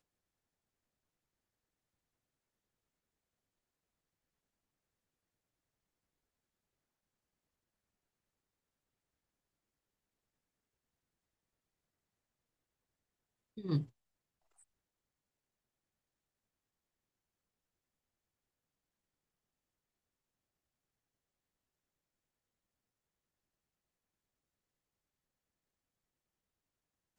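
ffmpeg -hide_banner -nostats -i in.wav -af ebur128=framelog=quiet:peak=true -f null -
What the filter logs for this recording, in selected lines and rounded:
Integrated loudness:
  I:         -37.9 LUFS
  Threshold: -49.3 LUFS
Loudness range:
  LRA:        10.4 LU
  Threshold: -66.0 LUFS
  LRA low:   -56.0 LUFS
  LRA high:  -45.6 LUFS
True peak:
  Peak:      -22.9 dBFS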